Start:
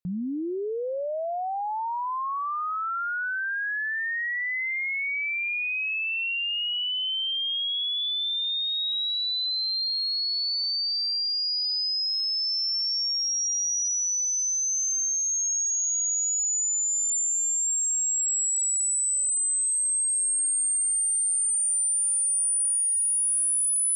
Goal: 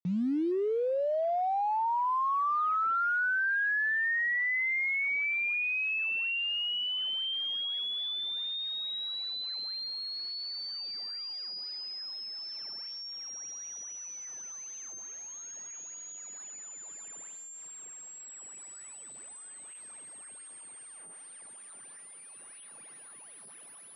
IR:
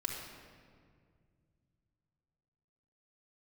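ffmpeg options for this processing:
-af "asubboost=boost=3.5:cutoff=230,acrusher=bits=7:mix=0:aa=0.000001,highpass=160,lowpass=2300,volume=1.5dB"

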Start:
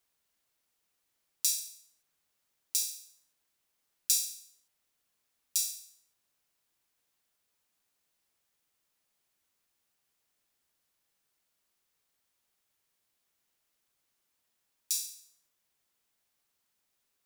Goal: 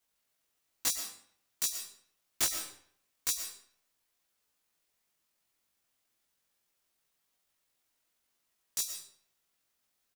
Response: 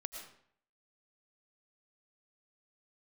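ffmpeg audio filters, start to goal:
-filter_complex "[0:a]aeval=exprs='(mod(7.5*val(0)+1,2)-1)/7.5':channel_layout=same,atempo=1.7,asplit=2[link_01][link_02];[1:a]atrim=start_sample=2205,adelay=18[link_03];[link_02][link_03]afir=irnorm=-1:irlink=0,volume=4dB[link_04];[link_01][link_04]amix=inputs=2:normalize=0,volume=-3dB"

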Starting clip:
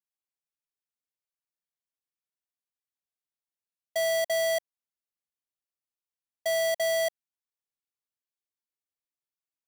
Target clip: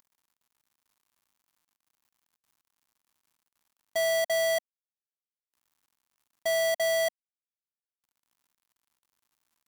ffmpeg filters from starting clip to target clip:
ffmpeg -i in.wav -af "acompressor=mode=upward:threshold=-40dB:ratio=2.5,aeval=exprs='val(0)*gte(abs(val(0)),0.00188)':channel_layout=same,equalizer=frequency=250:width_type=o:width=1:gain=4,equalizer=frequency=500:width_type=o:width=1:gain=-5,equalizer=frequency=1000:width_type=o:width=1:gain=7" out.wav

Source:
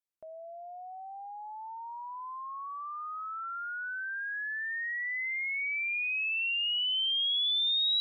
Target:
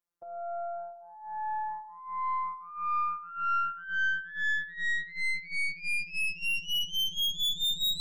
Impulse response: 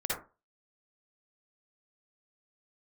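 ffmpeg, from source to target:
-af "afftfilt=real='hypot(re,im)*cos(PI*b)':imag='0':win_size=1024:overlap=0.75,aeval=exprs='0.0708*(cos(1*acos(clip(val(0)/0.0708,-1,1)))-cos(1*PI/2))+0.0112*(cos(5*acos(clip(val(0)/0.0708,-1,1)))-cos(5*PI/2))+0.00562*(cos(6*acos(clip(val(0)/0.0708,-1,1)))-cos(6*PI/2))+0.00708*(cos(7*acos(clip(val(0)/0.0708,-1,1)))-cos(7*PI/2))+0.0112*(cos(8*acos(clip(val(0)/0.0708,-1,1)))-cos(8*PI/2))':channel_layout=same,highshelf=frequency=1800:width_type=q:width=1.5:gain=-6,volume=8dB"

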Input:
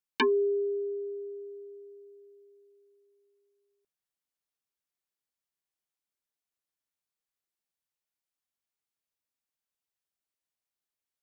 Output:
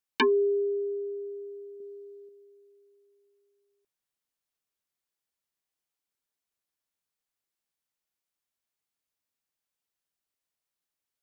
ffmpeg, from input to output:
ffmpeg -i in.wav -filter_complex "[0:a]asettb=1/sr,asplit=3[link_01][link_02][link_03];[link_01]atrim=end=1.804[link_04];[link_02]atrim=start=1.8:end=2.29,asetpts=PTS-STARTPTS,afade=type=in:duration=0.004:curve=qsin,afade=type=out:start_time=0.486:duration=0.004:curve=qsin,equalizer=frequency=250:width_type=o:width=1:gain=9,equalizer=frequency=1000:width_type=o:width=1:gain=6,equalizer=frequency=4000:width_type=o:width=1:gain=4[link_05];[link_03]atrim=start=2.286[link_06];[link_04][link_05]acrossfade=duration=0.004:curve1=hsin:curve2=qsin[link_07];[link_07][link_06]acrossfade=duration=0.004:curve1=qsin:curve2=hsin,volume=2dB" out.wav

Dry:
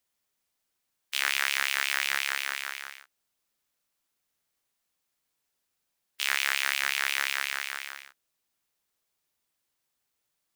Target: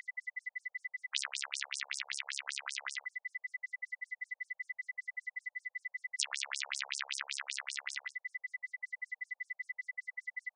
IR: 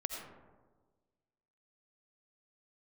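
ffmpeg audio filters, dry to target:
-filter_complex "[0:a]highshelf=frequency=2600:gain=9.5,aeval=exprs='val(0)+0.0112*sin(2*PI*2000*n/s)':channel_layout=same,acompressor=threshold=-31dB:ratio=12,asplit=2[link_01][link_02];[1:a]atrim=start_sample=2205,atrim=end_sample=3528[link_03];[link_02][link_03]afir=irnorm=-1:irlink=0,volume=-20dB[link_04];[link_01][link_04]amix=inputs=2:normalize=0,afftfilt=real='re*between(b*sr/1024,610*pow(7300/610,0.5+0.5*sin(2*PI*5.2*pts/sr))/1.41,610*pow(7300/610,0.5+0.5*sin(2*PI*5.2*pts/sr))*1.41)':imag='im*between(b*sr/1024,610*pow(7300/610,0.5+0.5*sin(2*PI*5.2*pts/sr))/1.41,610*pow(7300/610,0.5+0.5*sin(2*PI*5.2*pts/sr))*1.41)':win_size=1024:overlap=0.75,volume=6dB"

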